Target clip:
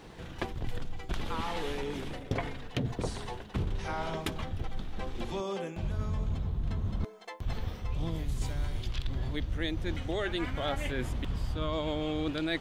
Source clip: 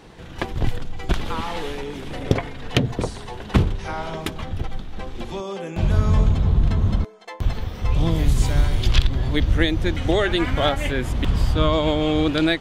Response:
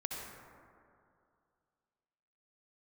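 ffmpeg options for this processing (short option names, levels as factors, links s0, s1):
-af "areverse,acompressor=threshold=0.0562:ratio=6,areverse,acrusher=bits=11:mix=0:aa=0.000001,volume=0.631"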